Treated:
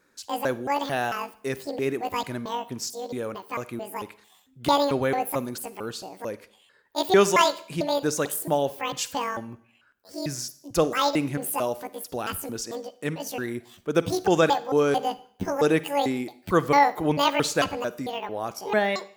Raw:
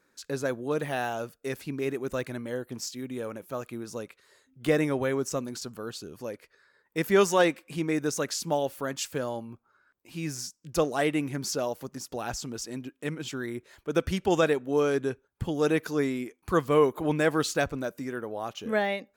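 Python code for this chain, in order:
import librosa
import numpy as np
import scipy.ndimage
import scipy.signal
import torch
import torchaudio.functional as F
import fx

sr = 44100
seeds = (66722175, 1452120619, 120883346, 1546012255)

y = fx.pitch_trill(x, sr, semitones=11.0, every_ms=223)
y = fx.rev_schroeder(y, sr, rt60_s=0.56, comb_ms=38, drr_db=16.0)
y = F.gain(torch.from_numpy(y), 3.5).numpy()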